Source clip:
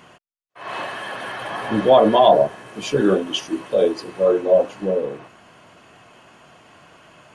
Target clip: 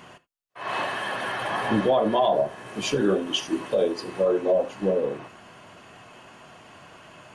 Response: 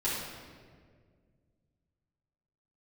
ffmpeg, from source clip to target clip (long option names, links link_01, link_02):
-filter_complex "[0:a]alimiter=limit=-13.5dB:level=0:latency=1:release=300,asplit=2[link_01][link_02];[1:a]atrim=start_sample=2205,atrim=end_sample=3969[link_03];[link_02][link_03]afir=irnorm=-1:irlink=0,volume=-18dB[link_04];[link_01][link_04]amix=inputs=2:normalize=0"